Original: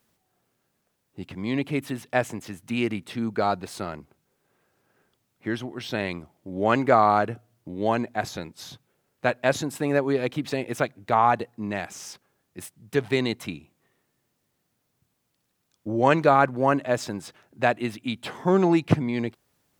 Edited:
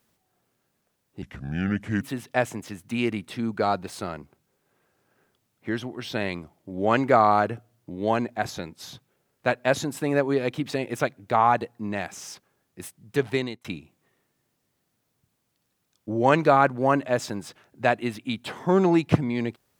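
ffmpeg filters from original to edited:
ffmpeg -i in.wav -filter_complex "[0:a]asplit=4[link_01][link_02][link_03][link_04];[link_01]atrim=end=1.224[link_05];[link_02]atrim=start=1.22:end=1.8,asetpts=PTS-STARTPTS,asetrate=32193,aresample=44100,atrim=end_sample=35038,asetpts=PTS-STARTPTS[link_06];[link_03]atrim=start=1.796:end=13.43,asetpts=PTS-STARTPTS,afade=type=out:start_time=11.284:duration=0.35[link_07];[link_04]atrim=start=13.43,asetpts=PTS-STARTPTS,afade=type=in:duration=0.004:curve=hsin[link_08];[link_05][link_06]acrossfade=duration=0.004:curve1=hsin:curve2=hsin[link_09];[link_07][link_08]concat=n=2:v=0:a=1[link_10];[link_09][link_10]acrossfade=duration=0.004:curve1=hsin:curve2=hsin" out.wav

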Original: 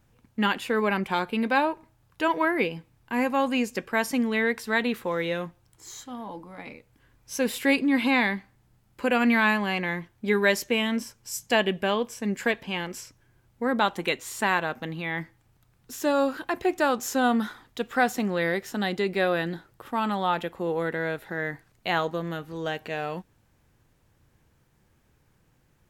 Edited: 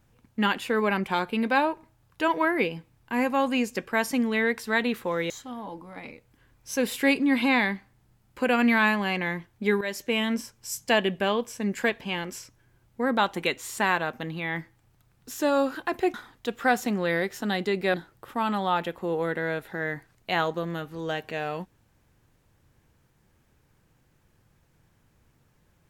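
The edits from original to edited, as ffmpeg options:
ffmpeg -i in.wav -filter_complex "[0:a]asplit=5[link_01][link_02][link_03][link_04][link_05];[link_01]atrim=end=5.302[link_06];[link_02]atrim=start=5.918:end=10.43,asetpts=PTS-STARTPTS,afade=type=out:start_time=4.508:duration=0.004:curve=hsin:silence=0.188365[link_07];[link_03]atrim=start=10.43:end=16.762,asetpts=PTS-STARTPTS,afade=type=in:duration=0.39:silence=0.188365[link_08];[link_04]atrim=start=17.458:end=19.262[link_09];[link_05]atrim=start=19.508[link_10];[link_07][link_08]concat=n=2:v=0:a=1[link_11];[link_06][link_11]acrossfade=duration=0.004:curve1=hsin:curve2=hsin[link_12];[link_12][link_09]acrossfade=duration=0.004:curve1=hsin:curve2=hsin[link_13];[link_13][link_10]acrossfade=duration=0.004:curve1=hsin:curve2=hsin" out.wav

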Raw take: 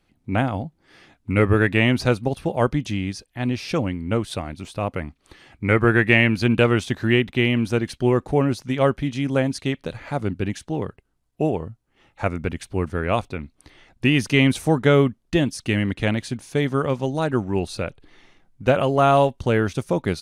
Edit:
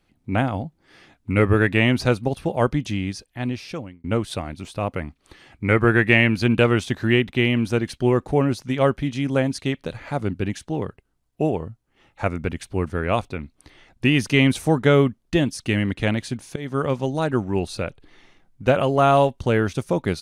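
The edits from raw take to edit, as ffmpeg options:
ffmpeg -i in.wav -filter_complex "[0:a]asplit=3[link_01][link_02][link_03];[link_01]atrim=end=4.04,asetpts=PTS-STARTPTS,afade=type=out:start_time=3.3:duration=0.74[link_04];[link_02]atrim=start=4.04:end=16.56,asetpts=PTS-STARTPTS,afade=type=in:duration=0.004:curve=hsin,afade=type=out:start_time=12.516:duration=0.004:curve=hsin:silence=0.1[link_05];[link_03]atrim=start=16.56,asetpts=PTS-STARTPTS,afade=type=in:duration=0.27:silence=0.1[link_06];[link_04][link_05][link_06]concat=n=3:v=0:a=1" out.wav

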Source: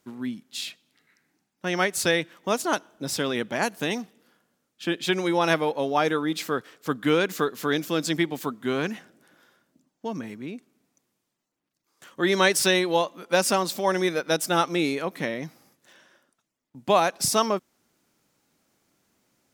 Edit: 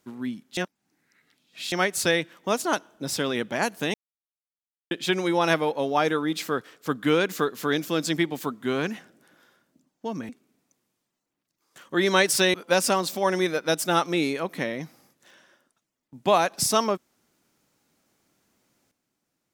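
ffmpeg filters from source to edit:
ffmpeg -i in.wav -filter_complex "[0:a]asplit=7[link_01][link_02][link_03][link_04][link_05][link_06][link_07];[link_01]atrim=end=0.572[link_08];[link_02]atrim=start=0.568:end=1.722,asetpts=PTS-STARTPTS,areverse[link_09];[link_03]atrim=start=1.718:end=3.94,asetpts=PTS-STARTPTS,afade=type=out:start_time=2.218:duration=0.004:curve=hsin[link_10];[link_04]atrim=start=3.94:end=4.91,asetpts=PTS-STARTPTS,volume=0[link_11];[link_05]atrim=start=4.91:end=10.292,asetpts=PTS-STARTPTS,afade=type=in:duration=0.004:curve=hsin[link_12];[link_06]atrim=start=10.548:end=12.802[link_13];[link_07]atrim=start=13.158[link_14];[link_08][link_09]acrossfade=duration=0.004:curve1=hsin:curve2=hsin[link_15];[link_10][link_11][link_12]concat=n=3:v=0:a=1[link_16];[link_15][link_16]acrossfade=duration=0.004:curve1=hsin:curve2=hsin[link_17];[link_17][link_13]acrossfade=duration=0.004:curve1=hsin:curve2=hsin[link_18];[link_18][link_14]acrossfade=duration=0.004:curve1=hsin:curve2=hsin" out.wav

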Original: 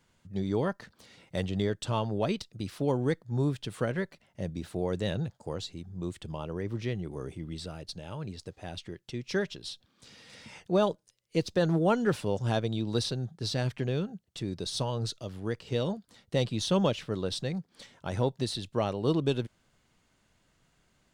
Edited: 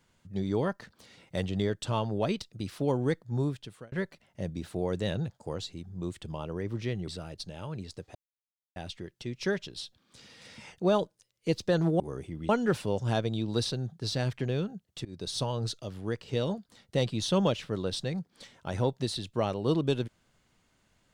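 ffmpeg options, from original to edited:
ffmpeg -i in.wav -filter_complex "[0:a]asplit=7[link_01][link_02][link_03][link_04][link_05][link_06][link_07];[link_01]atrim=end=3.92,asetpts=PTS-STARTPTS,afade=type=out:start_time=3.34:duration=0.58[link_08];[link_02]atrim=start=3.92:end=7.082,asetpts=PTS-STARTPTS,afade=type=in:duration=0.004:curve=hsin[link_09];[link_03]atrim=start=7.568:end=8.64,asetpts=PTS-STARTPTS,afade=type=out:start_time=1.068:duration=0.004:curve=hsin,apad=pad_dur=0.61[link_10];[link_04]atrim=start=8.64:end=11.882,asetpts=PTS-STARTPTS,afade=type=in:duration=0.004:curve=hsin[link_11];[link_05]atrim=start=7.078:end=7.572[link_12];[link_06]atrim=start=11.878:end=14.44,asetpts=PTS-STARTPTS,afade=type=out:start_time=2.558:duration=0.004:curve=hsin:silence=0.0668344[link_13];[link_07]atrim=start=14.44,asetpts=PTS-STARTPTS,afade=type=in:duration=0.32:curve=qsin:silence=0.0668344[link_14];[link_08][link_09]concat=n=2:v=0:a=1[link_15];[link_10][link_11]concat=n=2:v=0:a=1[link_16];[link_15][link_16]acrossfade=duration=0.004:curve1=hsin:curve2=hsin[link_17];[link_17][link_12]acrossfade=duration=0.004:curve1=hsin:curve2=hsin[link_18];[link_13][link_14]concat=n=2:v=0:a=1[link_19];[link_18][link_19]acrossfade=duration=0.004:curve1=hsin:curve2=hsin" out.wav

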